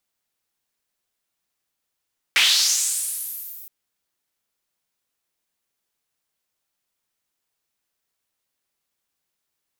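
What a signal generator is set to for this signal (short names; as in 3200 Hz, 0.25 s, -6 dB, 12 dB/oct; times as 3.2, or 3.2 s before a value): swept filtered noise white, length 1.32 s bandpass, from 2200 Hz, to 16000 Hz, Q 2.9, linear, gain ramp -28 dB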